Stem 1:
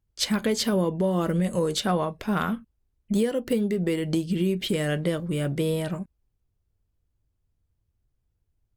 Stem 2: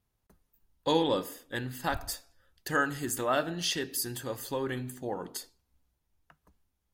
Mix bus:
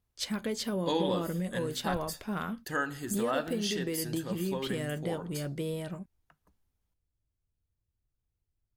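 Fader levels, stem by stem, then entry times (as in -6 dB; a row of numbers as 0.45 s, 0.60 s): -9.0 dB, -4.0 dB; 0.00 s, 0.00 s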